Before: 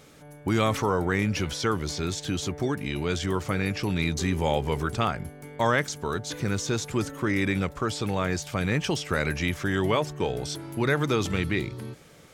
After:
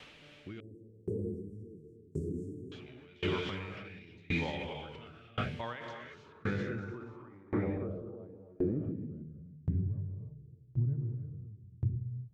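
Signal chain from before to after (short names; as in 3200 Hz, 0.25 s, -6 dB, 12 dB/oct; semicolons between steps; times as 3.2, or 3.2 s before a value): added noise white -45 dBFS; rotary speaker horn 0.8 Hz; non-linear reverb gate 0.35 s rising, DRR -4 dB; low-pass sweep 2900 Hz -> 120 Hz, 6.07–9.92; limiter -19 dBFS, peak gain reduction 12.5 dB; 0.6–2.72 Chebyshev band-stop 440–8300 Hz, order 4; dB-ramp tremolo decaying 0.93 Hz, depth 29 dB; gain -2.5 dB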